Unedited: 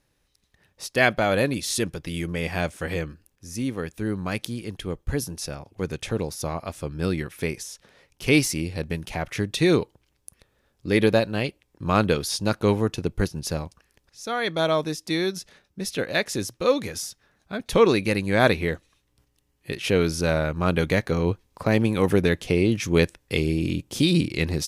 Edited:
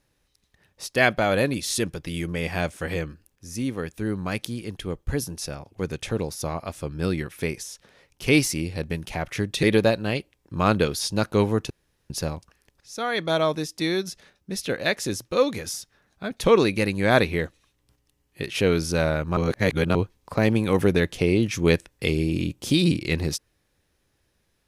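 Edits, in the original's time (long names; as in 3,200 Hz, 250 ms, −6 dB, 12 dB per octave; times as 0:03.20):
0:09.63–0:10.92: remove
0:12.99–0:13.39: fill with room tone
0:20.66–0:21.24: reverse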